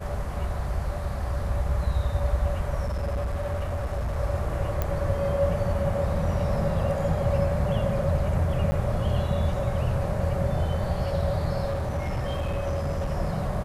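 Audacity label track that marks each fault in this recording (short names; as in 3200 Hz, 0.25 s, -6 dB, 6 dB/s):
2.850000	4.170000	clipped -24.5 dBFS
4.820000	4.820000	pop -13 dBFS
8.710000	8.720000	gap 10 ms
11.650000	13.110000	clipped -24 dBFS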